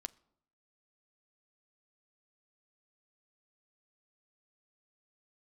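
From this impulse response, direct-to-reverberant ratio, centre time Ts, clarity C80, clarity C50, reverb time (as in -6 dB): 10.0 dB, 2 ms, 26.0 dB, 23.5 dB, not exponential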